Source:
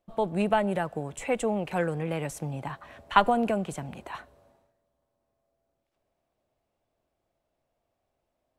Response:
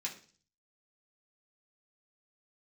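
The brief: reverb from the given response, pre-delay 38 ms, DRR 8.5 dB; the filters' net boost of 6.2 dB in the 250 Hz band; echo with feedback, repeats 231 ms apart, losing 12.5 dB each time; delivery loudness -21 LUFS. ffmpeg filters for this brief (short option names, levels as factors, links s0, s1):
-filter_complex "[0:a]equalizer=f=250:t=o:g=8,aecho=1:1:231|462|693:0.237|0.0569|0.0137,asplit=2[s0][s1];[1:a]atrim=start_sample=2205,adelay=38[s2];[s1][s2]afir=irnorm=-1:irlink=0,volume=0.355[s3];[s0][s3]amix=inputs=2:normalize=0,volume=1.58"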